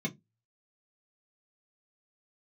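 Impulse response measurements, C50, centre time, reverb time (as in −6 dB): 22.5 dB, 10 ms, 0.15 s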